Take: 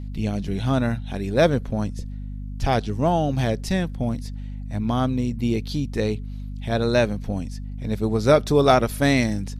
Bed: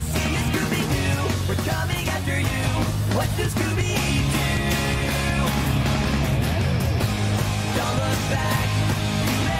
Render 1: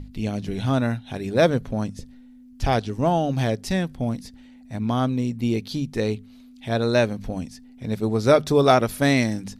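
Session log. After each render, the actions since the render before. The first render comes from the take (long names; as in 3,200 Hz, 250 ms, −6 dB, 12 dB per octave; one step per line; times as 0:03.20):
mains-hum notches 50/100/150/200 Hz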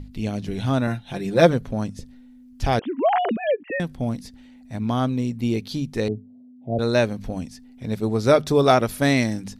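0:00.87–0:01.53: comb filter 5.8 ms, depth 67%
0:02.79–0:03.80: three sine waves on the formant tracks
0:06.08–0:06.79: elliptic band-pass filter 110–670 Hz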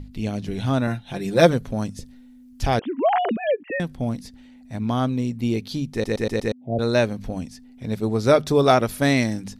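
0:01.21–0:02.66: high-shelf EQ 4,800 Hz +6 dB
0:05.92: stutter in place 0.12 s, 5 plays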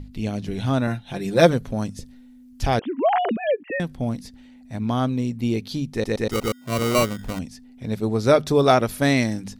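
0:06.31–0:07.39: sample-rate reduction 1,700 Hz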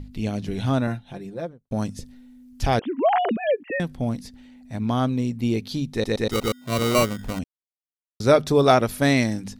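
0:00.61–0:01.71: fade out and dull
0:05.77–0:06.94: parametric band 3,800 Hz +6.5 dB 0.2 octaves
0:07.44–0:08.20: silence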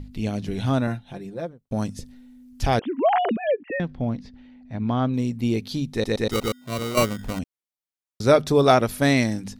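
0:03.37–0:05.14: high-frequency loss of the air 210 metres
0:06.34–0:06.97: fade out, to −8.5 dB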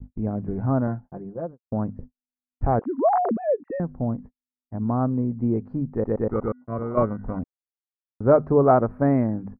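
noise gate −37 dBFS, range −56 dB
inverse Chebyshev low-pass filter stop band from 3,200 Hz, stop band 50 dB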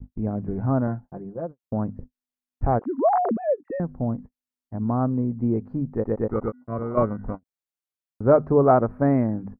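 every ending faded ahead of time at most 590 dB per second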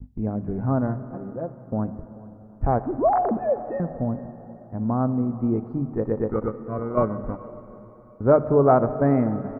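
single-tap delay 433 ms −22.5 dB
dense smooth reverb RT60 3.9 s, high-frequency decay 0.95×, DRR 11.5 dB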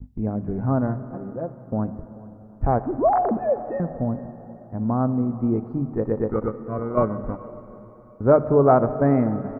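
level +1 dB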